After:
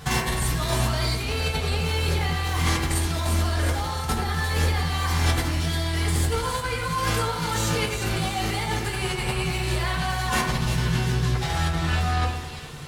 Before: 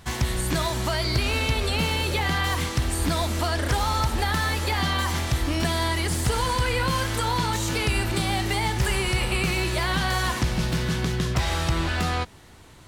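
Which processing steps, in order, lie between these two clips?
negative-ratio compressor -28 dBFS, ratio -0.5; split-band echo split 2200 Hz, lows 98 ms, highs 0.349 s, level -7 dB; reverb RT60 0.50 s, pre-delay 3 ms, DRR -1 dB

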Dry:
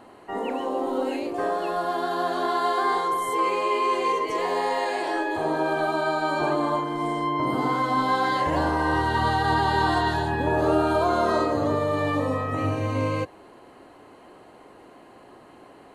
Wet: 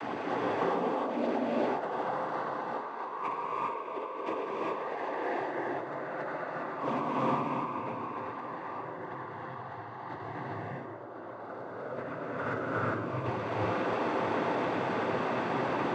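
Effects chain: delta modulation 64 kbps, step -29 dBFS; LPF 1800 Hz 12 dB/oct; notches 50/100/150/200/250/300/350 Hz; negative-ratio compressor -31 dBFS, ratio -0.5; noise vocoder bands 16; non-linear reverb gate 0.43 s rising, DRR -4 dB; gain -6 dB

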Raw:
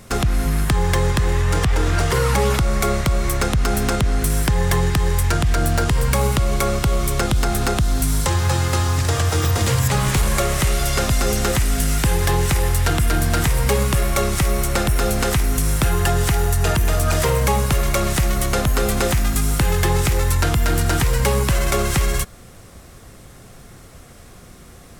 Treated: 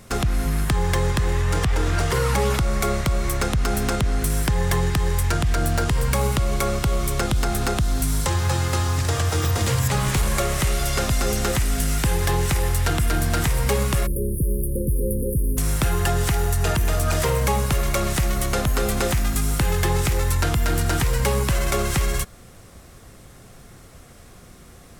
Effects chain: spectral delete 14.07–15.58, 540–9200 Hz; gain -3 dB

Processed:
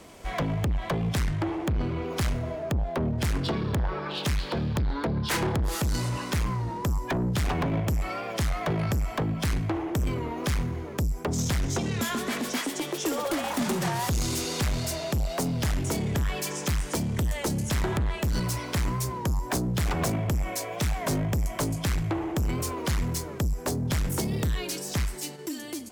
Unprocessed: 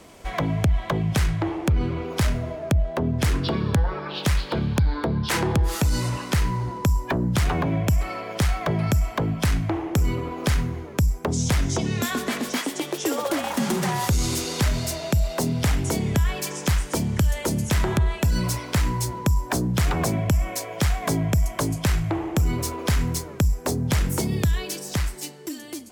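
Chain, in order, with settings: in parallel at -2 dB: level quantiser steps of 23 dB; on the sum: soft clip -21.5 dBFS, distortion -8 dB; record warp 33 1/3 rpm, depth 100 cents; gain -1.5 dB

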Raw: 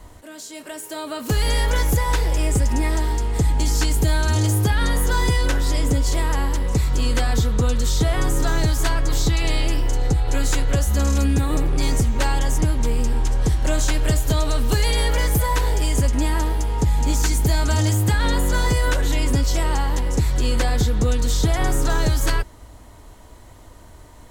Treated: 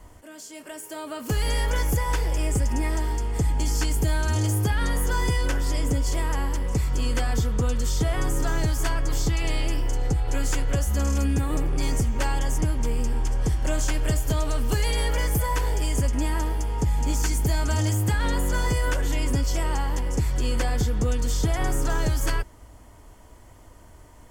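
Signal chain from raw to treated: notch 3900 Hz, Q 5.1; gain -4.5 dB

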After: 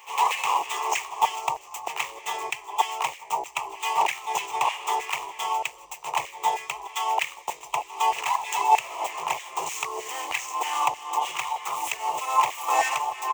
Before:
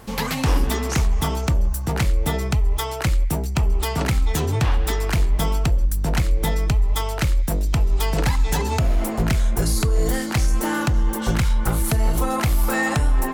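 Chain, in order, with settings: median filter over 9 samples; ripple EQ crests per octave 0.71, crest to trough 12 dB; LFO high-pass saw down 3.2 Hz 810–2000 Hz; fixed phaser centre 630 Hz, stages 4; harmoniser -3 st -9 dB; low shelf 140 Hz -4.5 dB; pre-echo 0.11 s -19 dB; gain +3.5 dB

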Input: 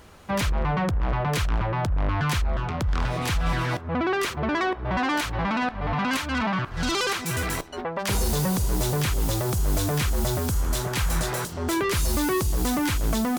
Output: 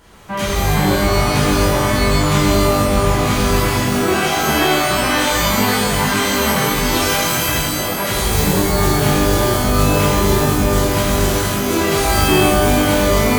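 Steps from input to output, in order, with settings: shimmer reverb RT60 1.4 s, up +12 st, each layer -2 dB, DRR -6.5 dB; gain -1.5 dB

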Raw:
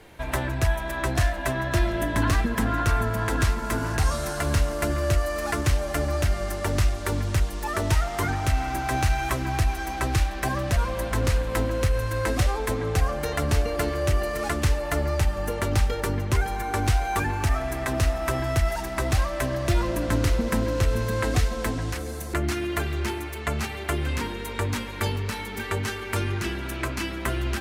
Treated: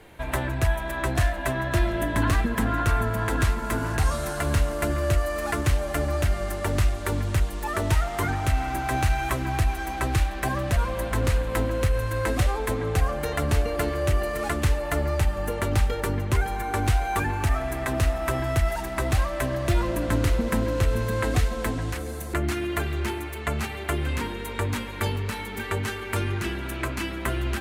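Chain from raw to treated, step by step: bell 5400 Hz -5 dB 0.66 oct

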